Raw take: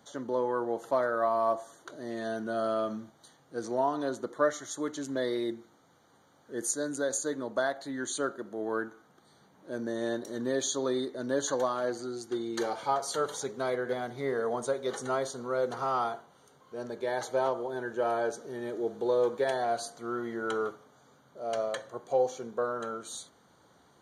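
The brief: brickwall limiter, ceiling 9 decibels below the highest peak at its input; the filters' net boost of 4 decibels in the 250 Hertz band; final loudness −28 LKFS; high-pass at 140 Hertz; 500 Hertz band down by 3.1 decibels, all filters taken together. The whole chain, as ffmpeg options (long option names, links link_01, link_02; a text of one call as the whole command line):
ffmpeg -i in.wav -af "highpass=140,equalizer=frequency=250:width_type=o:gain=7.5,equalizer=frequency=500:width_type=o:gain=-6,volume=6.5dB,alimiter=limit=-17.5dB:level=0:latency=1" out.wav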